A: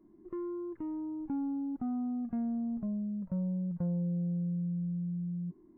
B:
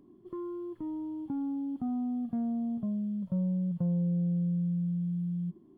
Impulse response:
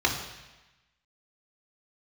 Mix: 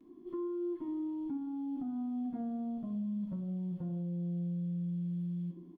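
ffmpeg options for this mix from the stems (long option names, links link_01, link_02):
-filter_complex "[0:a]volume=-7.5dB[link_01];[1:a]lowshelf=frequency=200:width_type=q:width=1.5:gain=-12,adelay=7.1,volume=-5.5dB,asplit=2[link_02][link_03];[link_03]volume=-8dB[link_04];[2:a]atrim=start_sample=2205[link_05];[link_04][link_05]afir=irnorm=-1:irlink=0[link_06];[link_01][link_02][link_06]amix=inputs=3:normalize=0,alimiter=level_in=7.5dB:limit=-24dB:level=0:latency=1:release=495,volume=-7.5dB"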